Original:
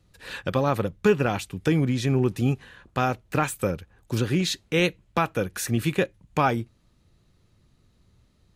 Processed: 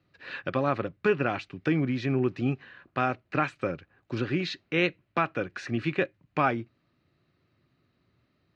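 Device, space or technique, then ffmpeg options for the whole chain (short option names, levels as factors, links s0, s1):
kitchen radio: -af "highpass=170,equalizer=f=200:t=q:w=4:g=-8,equalizer=f=470:t=q:w=4:g=-7,equalizer=f=890:t=q:w=4:g=-7,equalizer=f=3400:t=q:w=4:g=-8,lowpass=f=3900:w=0.5412,lowpass=f=3900:w=1.3066"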